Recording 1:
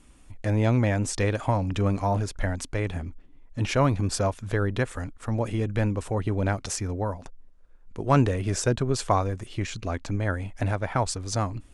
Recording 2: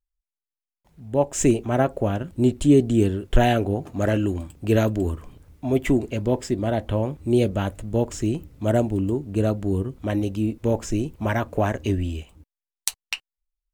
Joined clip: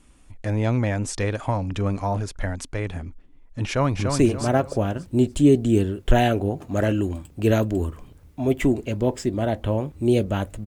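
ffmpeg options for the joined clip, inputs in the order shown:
ffmpeg -i cue0.wav -i cue1.wav -filter_complex "[0:a]apad=whole_dur=10.66,atrim=end=10.66,atrim=end=4.192[link_01];[1:a]atrim=start=1.438:end=7.91[link_02];[link_01][link_02]acrossfade=duration=0.004:curve1=hsin:curve2=hsin,asplit=2[link_03][link_04];[link_04]afade=type=in:start_time=3.66:duration=0.01,afade=type=out:start_time=4.19:duration=0.01,aecho=0:1:290|580|870|1160:0.562341|0.196819|0.0688868|0.0241104[link_05];[link_03][link_05]amix=inputs=2:normalize=0" out.wav

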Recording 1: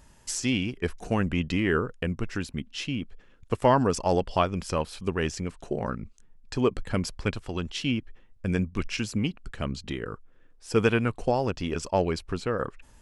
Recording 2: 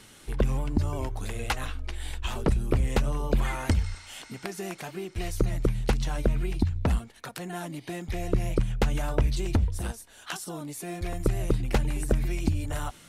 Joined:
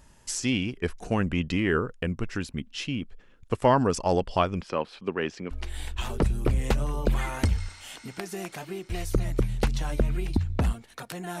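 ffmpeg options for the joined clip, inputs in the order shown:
ffmpeg -i cue0.wav -i cue1.wav -filter_complex "[0:a]asettb=1/sr,asplit=3[link_01][link_02][link_03];[link_01]atrim=end=4.614[link_04];[link_02]atrim=start=4.61:end=5.51,asetpts=PTS-STARTPTS,afade=type=in:duration=0.004:curve=qsin,afade=type=out:start_time=0.896:duration=0.004:curve=qsin,acrossover=split=180 4300:gain=0.126 1 0.1[link_05][link_06][link_07];[link_05][link_06][link_07]amix=inputs=3:normalize=0[link_08];[link_03]atrim=start=5.506[link_09];[link_04][link_08]acrossfade=duration=0.004:curve1=hsin:curve2=qsin[link_10];[link_10][link_09]acrossfade=duration=0.004:curve1=qsin:curve2=hsin,apad=whole_dur=11.4,atrim=end=11.4,atrim=end=5.512[link_11];[1:a]atrim=start=1.768:end=7.66[link_12];[link_11][link_12]acrossfade=duration=0.004:curve1=hsin:curve2=hsin" out.wav

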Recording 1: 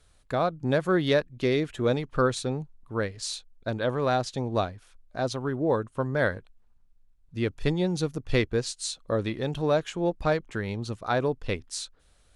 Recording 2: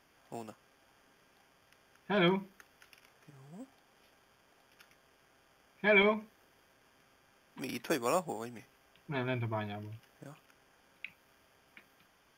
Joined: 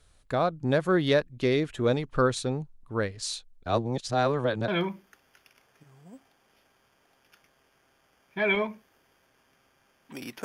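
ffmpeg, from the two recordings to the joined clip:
ffmpeg -i cue0.wav -i cue1.wav -filter_complex "[0:a]apad=whole_dur=10.44,atrim=end=10.44,asplit=2[link_01][link_02];[link_01]atrim=end=3.662[link_03];[link_02]atrim=start=3.658:end=4.682,asetpts=PTS-STARTPTS,areverse[link_04];[1:a]atrim=start=2.148:end=7.91[link_05];[link_03][link_04]acrossfade=duration=0.004:curve1=hsin:curve2=hsin[link_06];[link_06][link_05]acrossfade=duration=0.004:curve1=hsin:curve2=hsin" out.wav

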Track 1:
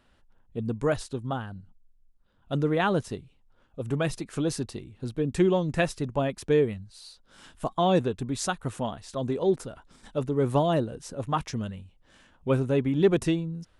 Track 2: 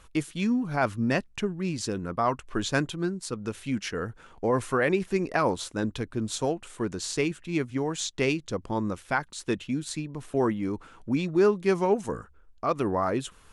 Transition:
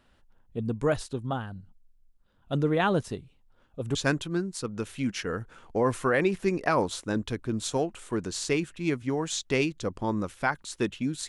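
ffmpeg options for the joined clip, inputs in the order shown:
ffmpeg -i cue0.wav -i cue1.wav -filter_complex "[0:a]apad=whole_dur=11.28,atrim=end=11.28,atrim=end=3.952[link_01];[1:a]atrim=start=2.628:end=9.96[link_02];[link_01][link_02]acrossfade=duration=0.004:curve1=hsin:curve2=hsin" out.wav

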